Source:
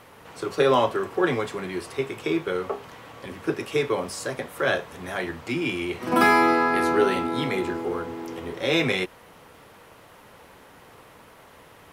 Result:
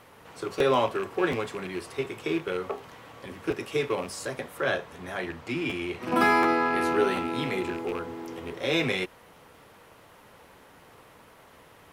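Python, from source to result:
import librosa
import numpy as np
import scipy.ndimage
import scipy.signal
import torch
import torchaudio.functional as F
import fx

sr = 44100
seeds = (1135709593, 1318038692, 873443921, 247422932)

y = fx.rattle_buzz(x, sr, strikes_db=-34.0, level_db=-26.0)
y = fx.high_shelf(y, sr, hz=6800.0, db=-5.0, at=(4.57, 6.81))
y = fx.buffer_crackle(y, sr, first_s=0.58, period_s=0.73, block=512, kind='repeat')
y = y * librosa.db_to_amplitude(-3.5)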